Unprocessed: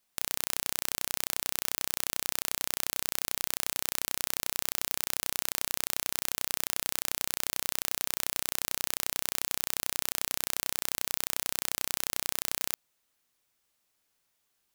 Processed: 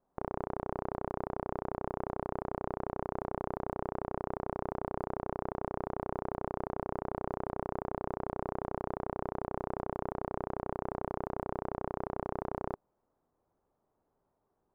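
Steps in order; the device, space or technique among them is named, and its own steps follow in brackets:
under water (low-pass filter 960 Hz 24 dB per octave; parametric band 400 Hz +4 dB 0.28 octaves)
level +9 dB

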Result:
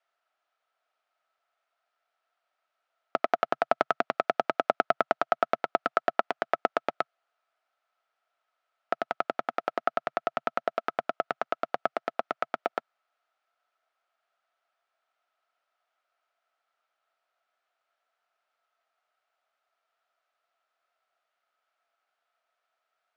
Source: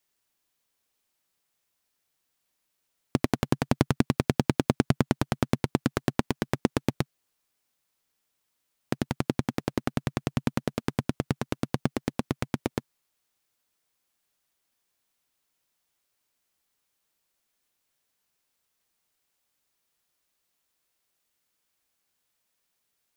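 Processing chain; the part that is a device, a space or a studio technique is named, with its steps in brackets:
tin-can telephone (band-pass filter 660–2,900 Hz; hollow resonant body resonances 680/1,300 Hz, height 16 dB, ringing for 25 ms)

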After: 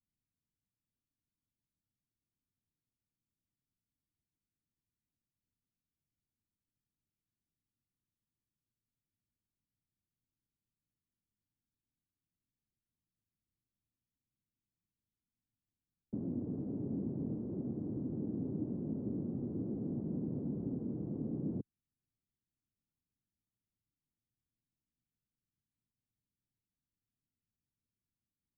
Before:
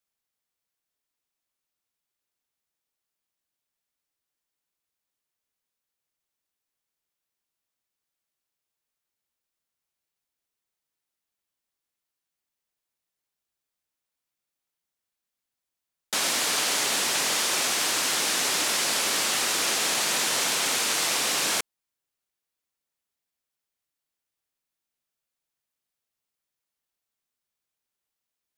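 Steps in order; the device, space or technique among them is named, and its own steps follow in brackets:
the neighbour's flat through the wall (low-pass filter 270 Hz 24 dB per octave; parametric band 110 Hz +5 dB 0.68 octaves)
level +7.5 dB

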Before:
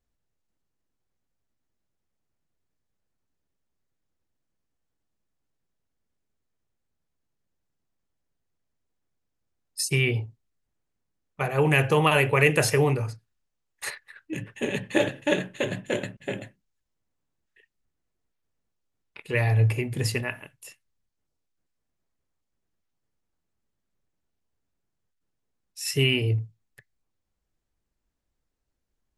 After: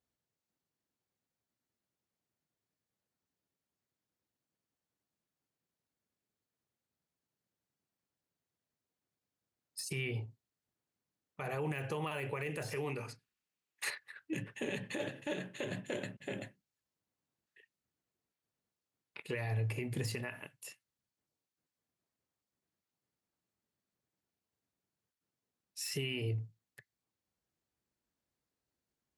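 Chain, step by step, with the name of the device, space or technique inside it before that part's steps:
broadcast voice chain (high-pass filter 110 Hz 12 dB per octave; de-essing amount 60%; downward compressor 4 to 1, threshold −28 dBFS, peak gain reduction 11 dB; parametric band 4,400 Hz +2.5 dB 0.22 octaves; brickwall limiter −23.5 dBFS, peak gain reduction 8.5 dB)
0:12.75–0:13.90: graphic EQ with 15 bands 100 Hz −12 dB, 630 Hz −4 dB, 2,500 Hz +6 dB
level −4 dB

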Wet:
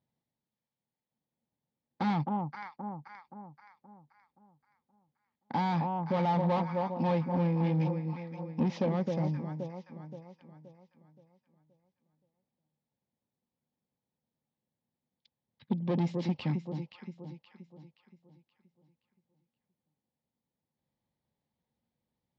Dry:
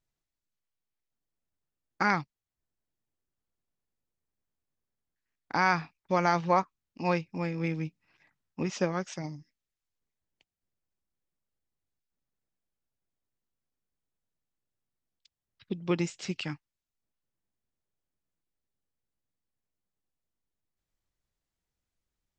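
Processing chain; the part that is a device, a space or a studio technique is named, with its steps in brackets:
0:07.80–0:08.60: parametric band 5,600 Hz +12 dB 2.5 octaves
delay that swaps between a low-pass and a high-pass 262 ms, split 1,000 Hz, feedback 63%, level −9 dB
guitar amplifier (tube saturation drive 32 dB, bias 0.25; bass and treble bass +6 dB, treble +4 dB; loudspeaker in its box 110–3,900 Hz, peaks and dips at 150 Hz +5 dB, 230 Hz +10 dB, 520 Hz +8 dB, 860 Hz +9 dB, 1,400 Hz −8 dB, 2,700 Hz −6 dB)

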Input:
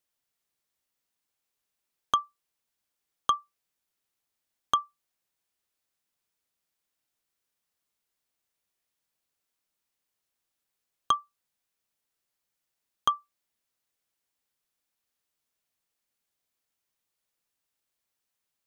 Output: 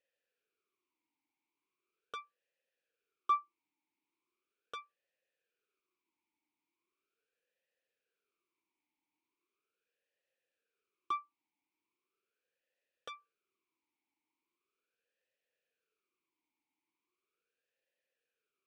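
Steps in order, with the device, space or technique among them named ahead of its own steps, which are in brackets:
talk box (tube saturation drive 32 dB, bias 0.35; formant filter swept between two vowels e-u 0.39 Hz)
level +13.5 dB

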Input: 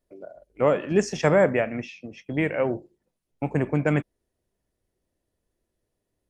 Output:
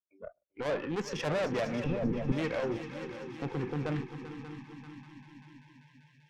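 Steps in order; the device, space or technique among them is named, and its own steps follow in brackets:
valve radio (band-pass filter 99–4,600 Hz; tube saturation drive 27 dB, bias 0.35; saturating transformer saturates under 200 Hz)
echo machine with several playback heads 195 ms, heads second and third, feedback 71%, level −11 dB
noise reduction from a noise print of the clip's start 29 dB
0:01.84–0:02.32: spectral tilt −4 dB per octave

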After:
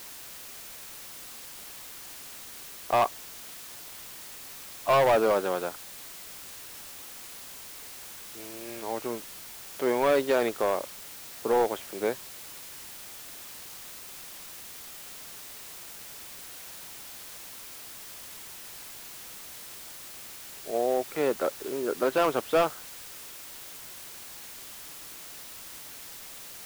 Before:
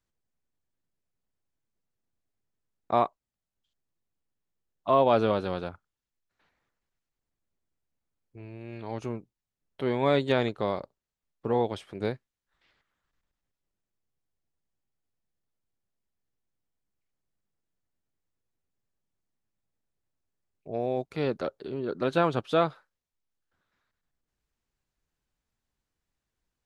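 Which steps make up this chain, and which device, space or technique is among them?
aircraft radio (band-pass filter 360–2,500 Hz; hard clipping −22.5 dBFS, distortion −9 dB; white noise bed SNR 11 dB)
level +5 dB

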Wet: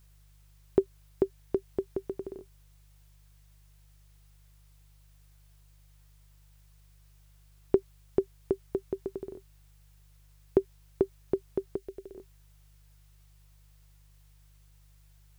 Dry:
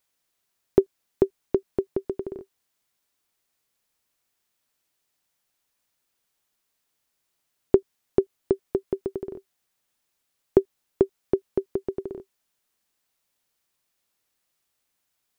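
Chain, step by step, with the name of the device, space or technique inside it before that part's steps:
video cassette with head-switching buzz (hum with harmonics 50 Hz, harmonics 3, −53 dBFS −7 dB per octave; white noise bed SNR 32 dB)
0:11.76–0:12.16: octave-band graphic EQ 125/250/1,000 Hz −11/−10/−11 dB
level −6 dB

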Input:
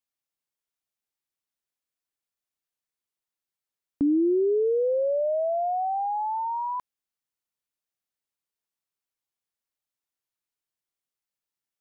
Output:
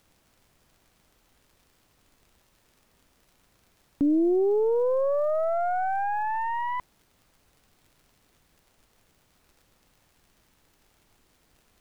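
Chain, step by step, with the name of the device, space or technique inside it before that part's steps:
record under a worn stylus (stylus tracing distortion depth 0.15 ms; surface crackle; pink noise bed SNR 35 dB)

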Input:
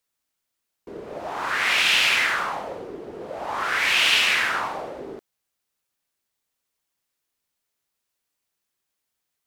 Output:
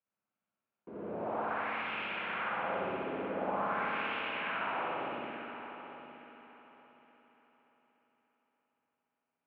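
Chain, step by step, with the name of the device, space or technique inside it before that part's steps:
0:04.68–0:05.16: low-shelf EQ 150 Hz −11.5 dB
bass amplifier (downward compressor 5 to 1, threshold −29 dBFS, peak gain reduction 12.5 dB; loudspeaker in its box 87–2,300 Hz, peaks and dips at 200 Hz +6 dB, 420 Hz −3 dB, 1,900 Hz −9 dB)
echo machine with several playback heads 291 ms, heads first and third, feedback 42%, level −12 dB
spring reverb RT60 2.4 s, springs 59 ms, chirp 70 ms, DRR −6 dB
level −8 dB

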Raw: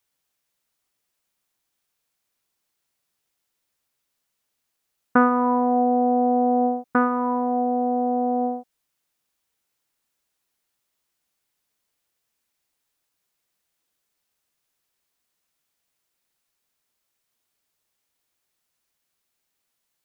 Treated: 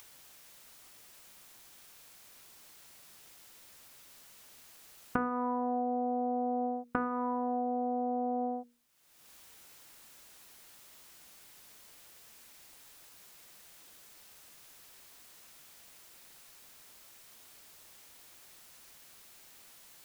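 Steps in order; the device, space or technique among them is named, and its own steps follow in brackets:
upward and downward compression (upward compression, threshold −41 dBFS; downward compressor 6 to 1, threshold −32 dBFS, peak gain reduction 18.5 dB)
mains-hum notches 60/120/180/240/300/360/420/480 Hz
level +2 dB

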